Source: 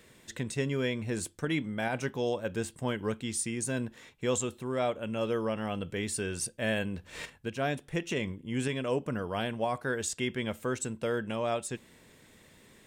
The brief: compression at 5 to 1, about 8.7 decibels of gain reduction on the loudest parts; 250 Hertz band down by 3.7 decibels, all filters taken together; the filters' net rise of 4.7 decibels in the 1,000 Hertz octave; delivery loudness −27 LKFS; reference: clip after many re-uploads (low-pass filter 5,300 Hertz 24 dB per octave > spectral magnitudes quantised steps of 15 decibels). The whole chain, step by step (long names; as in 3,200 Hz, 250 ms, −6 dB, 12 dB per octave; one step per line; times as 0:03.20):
parametric band 250 Hz −5 dB
parametric band 1,000 Hz +7 dB
downward compressor 5 to 1, threshold −33 dBFS
low-pass filter 5,300 Hz 24 dB per octave
spectral magnitudes quantised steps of 15 dB
level +12 dB